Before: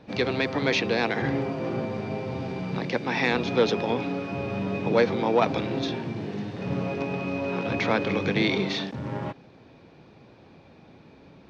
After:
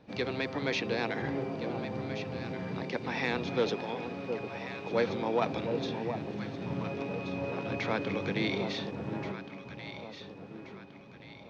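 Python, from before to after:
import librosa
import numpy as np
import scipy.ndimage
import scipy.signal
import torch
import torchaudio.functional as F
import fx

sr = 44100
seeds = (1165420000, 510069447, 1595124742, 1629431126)

y = fx.low_shelf(x, sr, hz=330.0, db=-12.0, at=(3.76, 4.93))
y = fx.echo_alternate(y, sr, ms=714, hz=1000.0, feedback_pct=64, wet_db=-6.5)
y = y * librosa.db_to_amplitude(-7.5)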